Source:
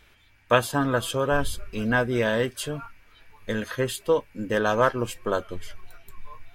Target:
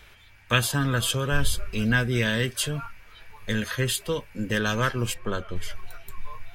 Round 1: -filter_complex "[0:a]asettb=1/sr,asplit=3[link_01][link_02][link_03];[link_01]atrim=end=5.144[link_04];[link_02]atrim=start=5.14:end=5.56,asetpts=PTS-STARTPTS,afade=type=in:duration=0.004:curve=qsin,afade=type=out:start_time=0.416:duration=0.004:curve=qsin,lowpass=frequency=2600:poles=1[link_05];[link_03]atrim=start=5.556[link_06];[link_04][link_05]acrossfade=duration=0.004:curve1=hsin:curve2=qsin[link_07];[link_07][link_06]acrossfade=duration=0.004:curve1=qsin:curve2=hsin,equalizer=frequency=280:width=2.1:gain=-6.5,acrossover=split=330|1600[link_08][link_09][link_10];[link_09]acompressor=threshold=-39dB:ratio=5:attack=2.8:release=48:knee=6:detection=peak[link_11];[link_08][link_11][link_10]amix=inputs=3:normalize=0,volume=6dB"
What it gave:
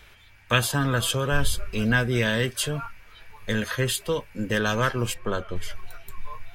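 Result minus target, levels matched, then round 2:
downward compressor: peak gain reduction −6.5 dB
-filter_complex "[0:a]asettb=1/sr,asplit=3[link_01][link_02][link_03];[link_01]atrim=end=5.144[link_04];[link_02]atrim=start=5.14:end=5.56,asetpts=PTS-STARTPTS,afade=type=in:duration=0.004:curve=qsin,afade=type=out:start_time=0.416:duration=0.004:curve=qsin,lowpass=frequency=2600:poles=1[link_05];[link_03]atrim=start=5.556[link_06];[link_04][link_05]acrossfade=duration=0.004:curve1=hsin:curve2=qsin[link_07];[link_07][link_06]acrossfade=duration=0.004:curve1=qsin:curve2=hsin,equalizer=frequency=280:width=2.1:gain=-6.5,acrossover=split=330|1600[link_08][link_09][link_10];[link_09]acompressor=threshold=-47dB:ratio=5:attack=2.8:release=48:knee=6:detection=peak[link_11];[link_08][link_11][link_10]amix=inputs=3:normalize=0,volume=6dB"

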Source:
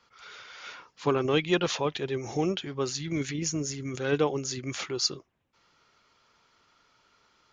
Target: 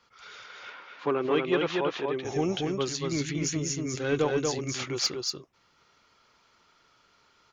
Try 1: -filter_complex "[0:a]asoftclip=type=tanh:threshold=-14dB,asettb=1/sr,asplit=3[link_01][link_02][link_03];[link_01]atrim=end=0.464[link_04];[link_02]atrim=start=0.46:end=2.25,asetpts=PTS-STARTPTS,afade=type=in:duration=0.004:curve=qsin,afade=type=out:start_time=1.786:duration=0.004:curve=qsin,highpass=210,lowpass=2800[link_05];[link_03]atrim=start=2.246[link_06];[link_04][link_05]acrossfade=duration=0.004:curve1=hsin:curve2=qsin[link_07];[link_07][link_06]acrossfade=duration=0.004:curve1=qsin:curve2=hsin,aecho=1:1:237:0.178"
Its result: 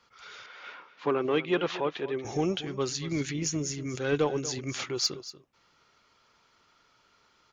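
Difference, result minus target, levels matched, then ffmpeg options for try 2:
echo-to-direct −11.5 dB
-filter_complex "[0:a]asoftclip=type=tanh:threshold=-14dB,asettb=1/sr,asplit=3[link_01][link_02][link_03];[link_01]atrim=end=0.464[link_04];[link_02]atrim=start=0.46:end=2.25,asetpts=PTS-STARTPTS,afade=type=in:duration=0.004:curve=qsin,afade=type=out:start_time=1.786:duration=0.004:curve=qsin,highpass=210,lowpass=2800[link_05];[link_03]atrim=start=2.246[link_06];[link_04][link_05]acrossfade=duration=0.004:curve1=hsin:curve2=qsin[link_07];[link_07][link_06]acrossfade=duration=0.004:curve1=qsin:curve2=hsin,aecho=1:1:237:0.668"

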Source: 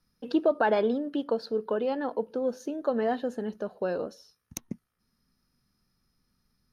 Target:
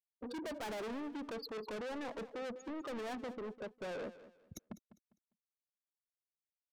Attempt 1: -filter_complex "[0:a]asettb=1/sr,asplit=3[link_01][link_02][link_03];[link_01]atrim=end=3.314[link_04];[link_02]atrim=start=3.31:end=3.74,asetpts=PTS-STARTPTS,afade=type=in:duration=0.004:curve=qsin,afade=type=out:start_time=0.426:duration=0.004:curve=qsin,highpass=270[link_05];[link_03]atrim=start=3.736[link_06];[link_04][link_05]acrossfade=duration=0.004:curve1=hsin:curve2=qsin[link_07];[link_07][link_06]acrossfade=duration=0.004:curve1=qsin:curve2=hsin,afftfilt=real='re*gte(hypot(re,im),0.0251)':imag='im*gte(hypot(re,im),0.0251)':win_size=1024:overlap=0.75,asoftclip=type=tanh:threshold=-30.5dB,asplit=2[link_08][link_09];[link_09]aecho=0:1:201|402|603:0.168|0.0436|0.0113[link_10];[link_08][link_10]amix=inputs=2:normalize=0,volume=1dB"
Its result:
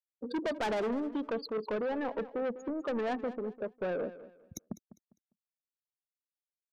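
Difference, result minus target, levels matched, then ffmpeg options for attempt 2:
soft clipping: distortion −4 dB
-filter_complex "[0:a]asettb=1/sr,asplit=3[link_01][link_02][link_03];[link_01]atrim=end=3.314[link_04];[link_02]atrim=start=3.31:end=3.74,asetpts=PTS-STARTPTS,afade=type=in:duration=0.004:curve=qsin,afade=type=out:start_time=0.426:duration=0.004:curve=qsin,highpass=270[link_05];[link_03]atrim=start=3.736[link_06];[link_04][link_05]acrossfade=duration=0.004:curve1=hsin:curve2=qsin[link_07];[link_07][link_06]acrossfade=duration=0.004:curve1=qsin:curve2=hsin,afftfilt=real='re*gte(hypot(re,im),0.0251)':imag='im*gte(hypot(re,im),0.0251)':win_size=1024:overlap=0.75,asoftclip=type=tanh:threshold=-41.5dB,asplit=2[link_08][link_09];[link_09]aecho=0:1:201|402|603:0.168|0.0436|0.0113[link_10];[link_08][link_10]amix=inputs=2:normalize=0,volume=1dB"

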